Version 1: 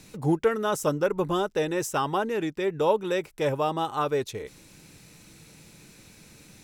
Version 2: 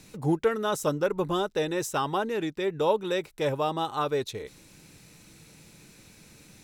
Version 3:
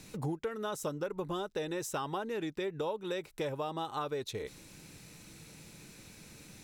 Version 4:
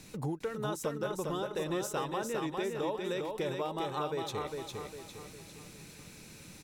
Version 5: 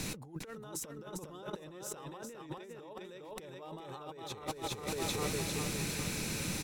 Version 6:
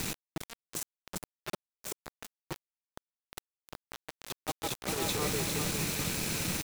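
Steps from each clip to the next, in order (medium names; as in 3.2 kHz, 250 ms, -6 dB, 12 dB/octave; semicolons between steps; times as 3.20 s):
dynamic bell 3.9 kHz, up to +7 dB, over -58 dBFS, Q 5.3; trim -1.5 dB
compression 6:1, threshold -33 dBFS, peak gain reduction 14 dB
feedback delay 404 ms, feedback 43%, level -4 dB
peak limiter -31.5 dBFS, peak gain reduction 9 dB; compressor with a negative ratio -47 dBFS, ratio -0.5; trim +7.5 dB
word length cut 6-bit, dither none; trim +2.5 dB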